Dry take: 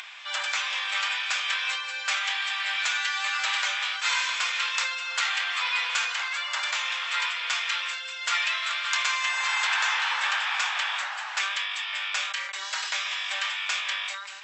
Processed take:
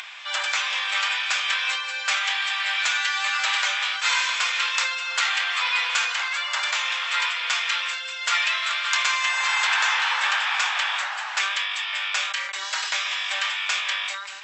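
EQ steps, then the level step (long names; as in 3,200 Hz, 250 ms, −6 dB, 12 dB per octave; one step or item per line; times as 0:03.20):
low-shelf EQ 340 Hz +3 dB
+3.5 dB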